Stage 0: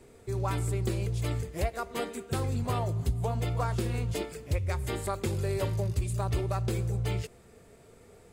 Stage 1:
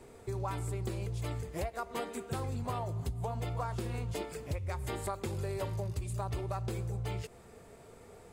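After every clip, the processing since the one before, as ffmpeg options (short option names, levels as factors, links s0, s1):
-af "equalizer=f=900:w=1.3:g=5.5,acompressor=threshold=0.0178:ratio=3"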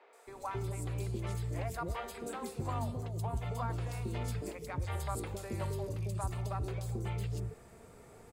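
-filter_complex "[0:a]acrossover=split=520|3600[s0][s1][s2];[s2]adelay=130[s3];[s0]adelay=270[s4];[s4][s1][s3]amix=inputs=3:normalize=0"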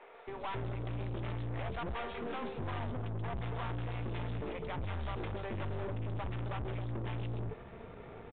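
-af "aeval=exprs='(tanh(200*val(0)+0.6)-tanh(0.6))/200':c=same,aresample=8000,aresample=44100,volume=2.99"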